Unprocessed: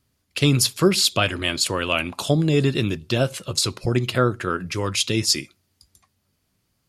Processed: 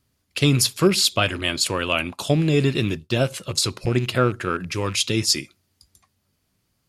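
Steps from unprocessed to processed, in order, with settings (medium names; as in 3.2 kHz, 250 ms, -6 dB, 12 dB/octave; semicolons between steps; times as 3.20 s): rattle on loud lows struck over -28 dBFS, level -28 dBFS; 1.16–3.21 s: expander -27 dBFS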